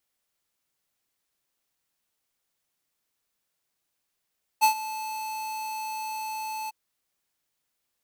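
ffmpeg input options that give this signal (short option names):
-f lavfi -i "aevalsrc='0.141*(2*lt(mod(871*t,1),0.5)-1)':d=2.101:s=44100,afade=t=in:d=0.028,afade=t=out:st=0.028:d=0.099:silence=0.15,afade=t=out:st=2.08:d=0.021"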